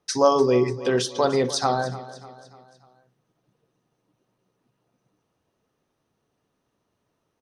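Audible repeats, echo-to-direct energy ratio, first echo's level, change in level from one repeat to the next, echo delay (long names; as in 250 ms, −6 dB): 3, −15.0 dB, −16.0 dB, −6.5 dB, 296 ms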